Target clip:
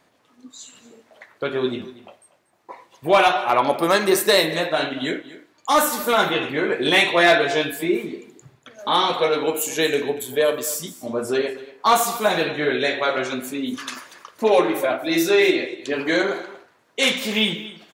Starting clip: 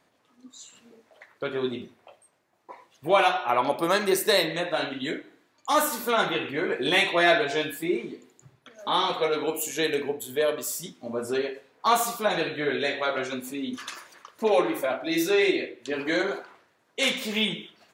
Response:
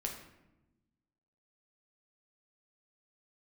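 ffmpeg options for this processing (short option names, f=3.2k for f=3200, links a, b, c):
-af "volume=13dB,asoftclip=hard,volume=-13dB,aecho=1:1:237:0.133,volume=5.5dB"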